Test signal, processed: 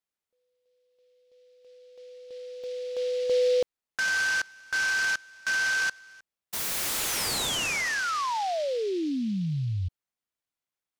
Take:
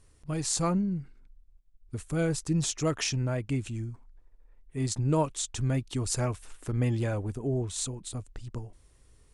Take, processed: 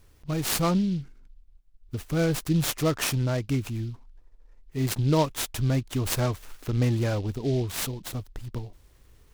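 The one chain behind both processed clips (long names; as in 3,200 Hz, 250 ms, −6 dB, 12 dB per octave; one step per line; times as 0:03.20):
short delay modulated by noise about 3,500 Hz, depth 0.04 ms
level +3.5 dB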